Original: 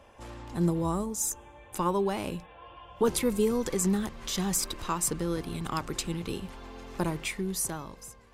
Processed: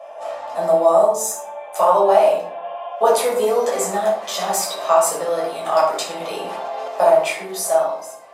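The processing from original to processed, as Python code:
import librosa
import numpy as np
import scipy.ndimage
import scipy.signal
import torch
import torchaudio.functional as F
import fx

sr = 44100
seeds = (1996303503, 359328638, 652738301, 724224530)

y = fx.highpass_res(x, sr, hz=640.0, q=7.2)
y = fx.peak_eq(y, sr, hz=850.0, db=3.0, octaves=1.6)
y = fx.room_shoebox(y, sr, seeds[0], volume_m3=620.0, walls='furnished', distance_m=6.1)
y = fx.env_flatten(y, sr, amount_pct=70, at=(6.2, 6.88))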